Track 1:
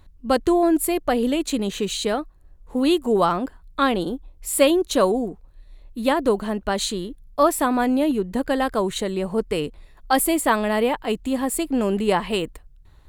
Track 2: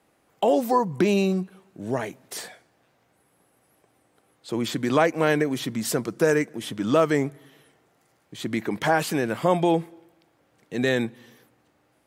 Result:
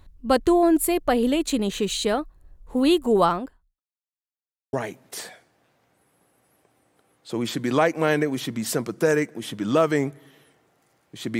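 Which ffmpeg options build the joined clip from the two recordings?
-filter_complex "[0:a]apad=whole_dur=11.39,atrim=end=11.39,asplit=2[a][b];[a]atrim=end=3.8,asetpts=PTS-STARTPTS,afade=t=out:st=3.27:d=0.53:c=qua[c];[b]atrim=start=3.8:end=4.73,asetpts=PTS-STARTPTS,volume=0[d];[1:a]atrim=start=1.92:end=8.58,asetpts=PTS-STARTPTS,afade=t=in:d=0.004:c=hsin[e];[c][d][e]concat=n=3:v=0:a=1"

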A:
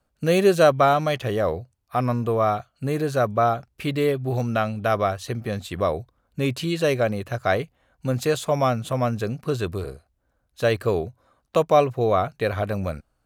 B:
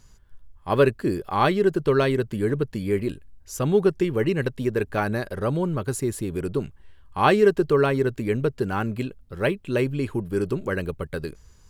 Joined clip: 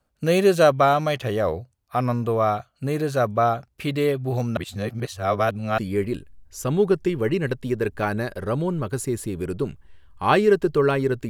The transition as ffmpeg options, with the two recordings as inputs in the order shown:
-filter_complex "[0:a]apad=whole_dur=11.29,atrim=end=11.29,asplit=2[a][b];[a]atrim=end=4.572[c];[b]atrim=start=4.568:end=5.782,asetpts=PTS-STARTPTS,areverse[d];[1:a]atrim=start=2.728:end=8.24[e];[c][d]acrossfade=d=0.004:c1=hsin:c2=hsin[f];[f][e]acrossfade=d=0.004:c1=hsin:c2=hsin"

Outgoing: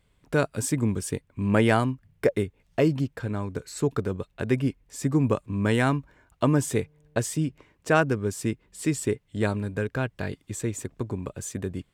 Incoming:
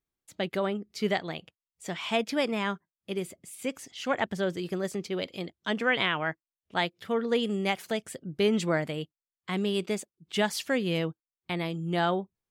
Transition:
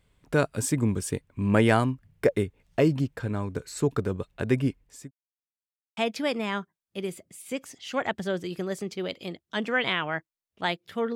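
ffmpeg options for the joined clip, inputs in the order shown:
-filter_complex "[0:a]apad=whole_dur=11.15,atrim=end=11.15,asplit=2[a][b];[a]atrim=end=5.11,asetpts=PTS-STARTPTS,afade=t=out:st=4.57:d=0.54:c=qsin[c];[b]atrim=start=5.11:end=5.97,asetpts=PTS-STARTPTS,volume=0[d];[1:a]atrim=start=2.1:end=7.28,asetpts=PTS-STARTPTS,afade=t=in:d=0.004:c=hsin[e];[c][d][e]concat=n=3:v=0:a=1"

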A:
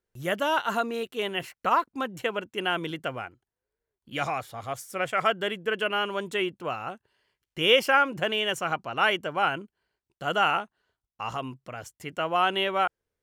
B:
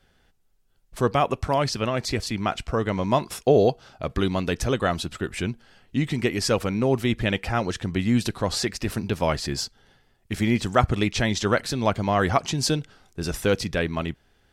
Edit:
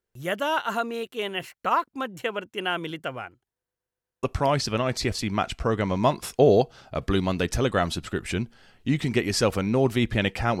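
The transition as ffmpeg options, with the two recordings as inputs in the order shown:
-filter_complex "[0:a]apad=whole_dur=10.6,atrim=end=10.6,asplit=6[a][b][c][d][e][f];[a]atrim=end=3.632[g];[b]atrim=start=3.508:end=3.632[h];[c]atrim=start=3.508:end=3.632[i];[d]atrim=start=3.508:end=3.632[j];[e]atrim=start=3.508:end=3.632[k];[f]atrim=start=3.508:end=3.632[l];[1:a]atrim=start=1.308:end=7.68[m];[g][h]acrossfade=d=0.004:c1=hsin:c2=hsin[n];[n][i]acrossfade=d=0.004:c1=hsin:c2=hsin[o];[o][j]acrossfade=d=0.004:c1=hsin:c2=hsin[p];[p][k]acrossfade=d=0.004:c1=hsin:c2=hsin[q];[q][l]acrossfade=d=0.004:c1=hsin:c2=hsin[r];[r][m]acrossfade=d=0.004:c1=hsin:c2=hsin"

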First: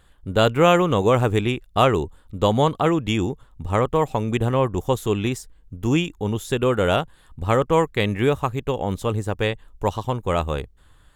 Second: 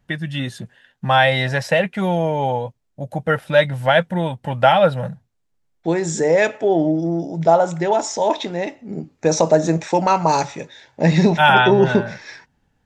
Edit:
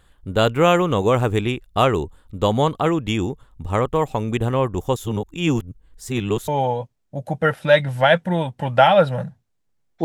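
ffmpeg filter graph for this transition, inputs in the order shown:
-filter_complex "[0:a]apad=whole_dur=10.04,atrim=end=10.04,asplit=2[a][b];[a]atrim=end=4.962[c];[b]atrim=start=4.958:end=6.482,asetpts=PTS-STARTPTS,areverse[d];[1:a]atrim=start=2.328:end=5.89[e];[c][d]acrossfade=d=0.004:c1=hsin:c2=hsin[f];[f][e]acrossfade=d=0.004:c1=hsin:c2=hsin"

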